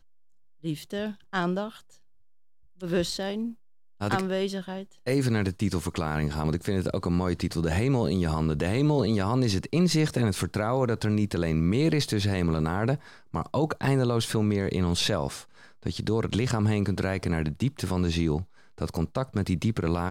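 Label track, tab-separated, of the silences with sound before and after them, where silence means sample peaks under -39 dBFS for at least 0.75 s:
1.770000	2.810000	silence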